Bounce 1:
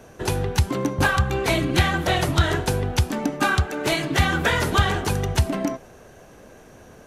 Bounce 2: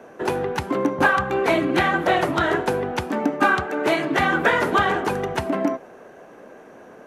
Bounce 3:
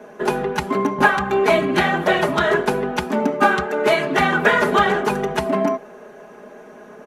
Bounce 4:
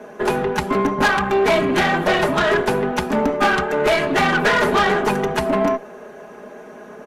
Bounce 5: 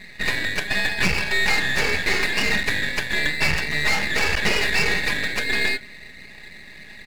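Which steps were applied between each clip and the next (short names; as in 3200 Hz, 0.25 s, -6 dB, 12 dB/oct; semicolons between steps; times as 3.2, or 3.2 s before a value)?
three-band isolator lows -23 dB, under 200 Hz, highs -14 dB, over 2300 Hz; gain +4.5 dB
comb 4.8 ms, depth 83%; gain +1 dB
tube stage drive 16 dB, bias 0.45; gain +4.5 dB
four-band scrambler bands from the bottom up 2143; half-wave rectifier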